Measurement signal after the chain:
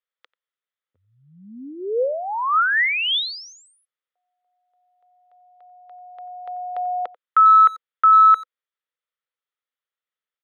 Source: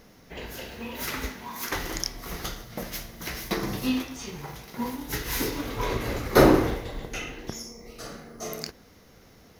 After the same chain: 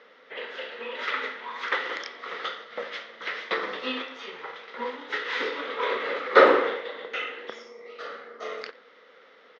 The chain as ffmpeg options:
-filter_complex "[0:a]highpass=f=330:w=0.5412,highpass=f=330:w=1.3066,equalizer=f=330:t=q:w=4:g=-9,equalizer=f=500:t=q:w=4:g=8,equalizer=f=720:t=q:w=4:g=-5,equalizer=f=1.3k:t=q:w=4:g=9,equalizer=f=1.9k:t=q:w=4:g=7,equalizer=f=3.4k:t=q:w=4:g=7,lowpass=f=3.7k:w=0.5412,lowpass=f=3.7k:w=1.3066,asplit=2[a][b];[b]adelay=90,highpass=300,lowpass=3.4k,asoftclip=type=hard:threshold=-11.5dB,volume=-20dB[c];[a][c]amix=inputs=2:normalize=0"

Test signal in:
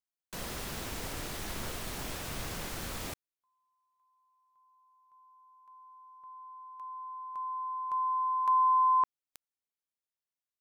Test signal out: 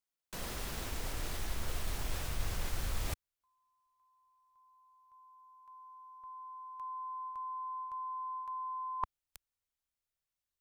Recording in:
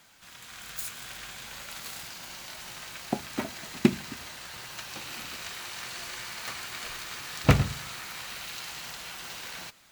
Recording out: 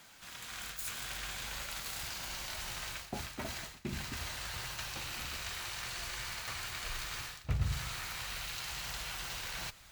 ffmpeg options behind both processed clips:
-af "areverse,acompressor=threshold=-40dB:ratio=12:attack=32:release=265:knee=1:detection=peak,areverse,asubboost=boost=6.5:cutoff=89,volume=1dB"

